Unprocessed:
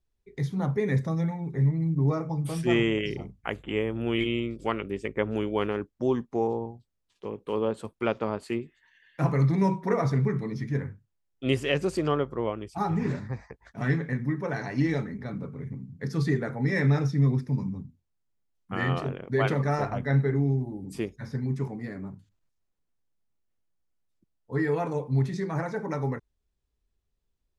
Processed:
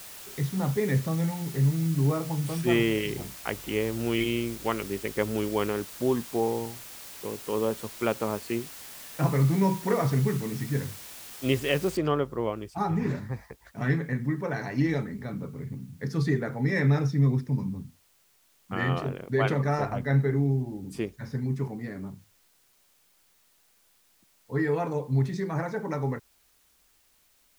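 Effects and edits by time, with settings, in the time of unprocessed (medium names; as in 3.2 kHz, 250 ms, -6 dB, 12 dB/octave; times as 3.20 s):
11.97 s: noise floor step -44 dB -65 dB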